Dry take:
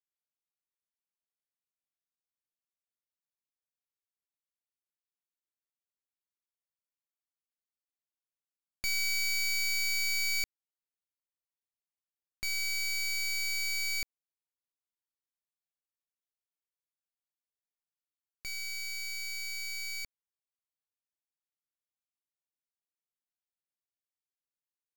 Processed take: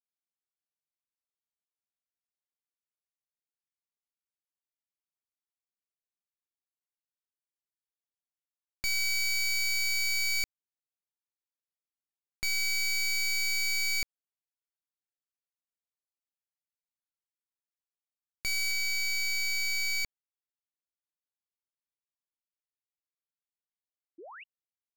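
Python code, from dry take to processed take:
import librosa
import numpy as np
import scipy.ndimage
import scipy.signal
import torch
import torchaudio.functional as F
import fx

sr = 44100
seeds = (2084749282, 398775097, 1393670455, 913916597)

y = fx.lowpass(x, sr, hz=fx.steps((0.0, 12000.0), (18.71, 4900.0)), slope=12)
y = fx.leveller(y, sr, passes=5)
y = fx.spec_paint(y, sr, seeds[0], shape='rise', start_s=24.18, length_s=0.26, low_hz=300.0, high_hz=3000.0, level_db=-47.0)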